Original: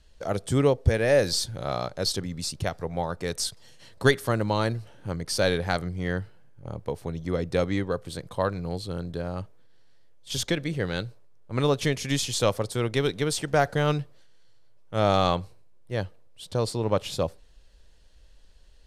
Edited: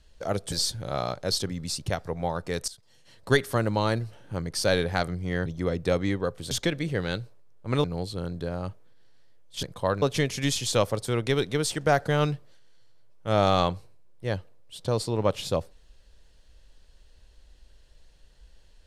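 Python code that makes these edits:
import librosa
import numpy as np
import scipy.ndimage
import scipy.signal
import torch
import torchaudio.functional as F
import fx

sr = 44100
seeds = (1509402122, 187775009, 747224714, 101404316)

y = fx.edit(x, sr, fx.cut(start_s=0.52, length_s=0.74),
    fx.fade_in_from(start_s=3.42, length_s=0.82, floor_db=-18.0),
    fx.cut(start_s=6.2, length_s=0.93),
    fx.swap(start_s=8.18, length_s=0.39, other_s=10.36, other_length_s=1.33), tone=tone)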